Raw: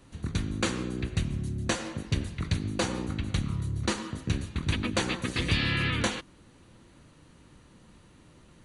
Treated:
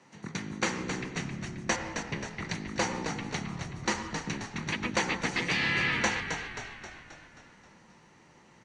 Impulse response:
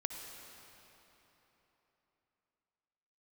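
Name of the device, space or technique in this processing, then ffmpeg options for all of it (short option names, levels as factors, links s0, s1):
television speaker: -filter_complex "[0:a]asettb=1/sr,asplit=3[s0][s1][s2];[s0]atrim=end=1.764[s3];[s1]atrim=start=1.76:end=2.4,asetpts=PTS-STARTPTS,afade=t=in:d=0.004:c=qsin,afade=t=out:st=0.636:d=0.004:c=qsin,acrossover=split=3600[s4][s5];[s5]acompressor=threshold=0.00224:ratio=4:attack=1:release=60[s6];[s4][s6]amix=inputs=2:normalize=0[s7];[s2]atrim=start=2.396[s8];[s3][s7]acrossfade=d=0.004:c1=hsin:c2=qsin[s9];[s9][s8]acrossfade=d=0.004:c1=qsin:c2=hsin,highpass=f=160:w=0.5412,highpass=f=160:w=1.3066,equalizer=f=280:t=q:w=4:g=-6,equalizer=f=870:t=q:w=4:g=8,equalizer=f=2000:t=q:w=4:g=8,equalizer=f=3600:t=q:w=4:g=-5,equalizer=f=5800:t=q:w=4:g=6,lowpass=f=7400:w=0.5412,lowpass=f=7400:w=1.3066,asplit=8[s10][s11][s12][s13][s14][s15][s16][s17];[s11]adelay=266,afreqshift=-48,volume=0.447[s18];[s12]adelay=532,afreqshift=-96,volume=0.245[s19];[s13]adelay=798,afreqshift=-144,volume=0.135[s20];[s14]adelay=1064,afreqshift=-192,volume=0.0741[s21];[s15]adelay=1330,afreqshift=-240,volume=0.0407[s22];[s16]adelay=1596,afreqshift=-288,volume=0.0224[s23];[s17]adelay=1862,afreqshift=-336,volume=0.0123[s24];[s10][s18][s19][s20][s21][s22][s23][s24]amix=inputs=8:normalize=0,volume=0.841"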